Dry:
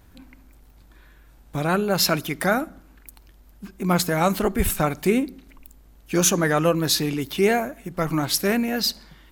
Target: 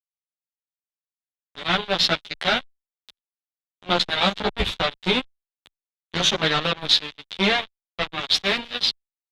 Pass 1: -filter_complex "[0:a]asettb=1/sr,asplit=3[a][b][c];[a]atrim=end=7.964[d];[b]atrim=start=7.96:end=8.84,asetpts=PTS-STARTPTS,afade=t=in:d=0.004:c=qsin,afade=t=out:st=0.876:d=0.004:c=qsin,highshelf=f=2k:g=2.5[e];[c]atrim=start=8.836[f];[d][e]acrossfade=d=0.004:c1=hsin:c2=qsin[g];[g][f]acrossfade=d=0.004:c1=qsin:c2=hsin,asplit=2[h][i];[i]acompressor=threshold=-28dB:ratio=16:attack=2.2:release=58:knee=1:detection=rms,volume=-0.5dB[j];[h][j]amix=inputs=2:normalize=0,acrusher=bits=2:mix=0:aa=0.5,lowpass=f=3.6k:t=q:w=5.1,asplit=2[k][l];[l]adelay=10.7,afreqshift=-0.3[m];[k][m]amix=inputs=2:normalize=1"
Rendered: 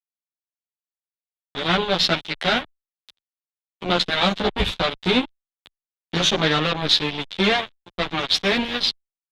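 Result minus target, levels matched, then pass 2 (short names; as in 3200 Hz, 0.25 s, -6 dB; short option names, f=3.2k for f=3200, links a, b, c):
250 Hz band +3.5 dB
-filter_complex "[0:a]asettb=1/sr,asplit=3[a][b][c];[a]atrim=end=7.964[d];[b]atrim=start=7.96:end=8.84,asetpts=PTS-STARTPTS,afade=t=in:d=0.004:c=qsin,afade=t=out:st=0.876:d=0.004:c=qsin,highshelf=f=2k:g=2.5[e];[c]atrim=start=8.836[f];[d][e]acrossfade=d=0.004:c1=hsin:c2=qsin[g];[g][f]acrossfade=d=0.004:c1=qsin:c2=hsin,asplit=2[h][i];[i]acompressor=threshold=-28dB:ratio=16:attack=2.2:release=58:knee=1:detection=rms,highpass=f=280:w=0.5412,highpass=f=280:w=1.3066,volume=-0.5dB[j];[h][j]amix=inputs=2:normalize=0,acrusher=bits=2:mix=0:aa=0.5,lowpass=f=3.6k:t=q:w=5.1,asplit=2[k][l];[l]adelay=10.7,afreqshift=-0.3[m];[k][m]amix=inputs=2:normalize=1"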